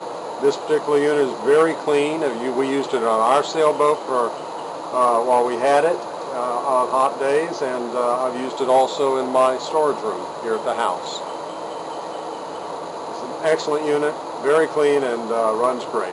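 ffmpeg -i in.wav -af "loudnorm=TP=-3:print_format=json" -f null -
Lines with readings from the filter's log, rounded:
"input_i" : "-20.5",
"input_tp" : "-4.5",
"input_lra" : "3.4",
"input_thresh" : "-30.5",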